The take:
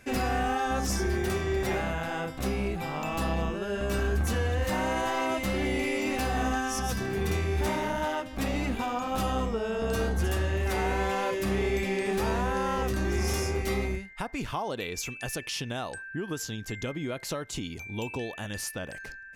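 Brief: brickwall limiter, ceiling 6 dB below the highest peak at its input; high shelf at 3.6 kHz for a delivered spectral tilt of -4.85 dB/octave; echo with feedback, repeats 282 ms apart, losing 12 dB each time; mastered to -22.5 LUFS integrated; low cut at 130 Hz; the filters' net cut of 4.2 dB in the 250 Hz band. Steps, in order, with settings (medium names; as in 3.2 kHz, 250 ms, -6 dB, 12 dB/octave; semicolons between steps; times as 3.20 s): high-pass 130 Hz; peaking EQ 250 Hz -5 dB; treble shelf 3.6 kHz -9 dB; peak limiter -25 dBFS; feedback delay 282 ms, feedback 25%, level -12 dB; trim +12 dB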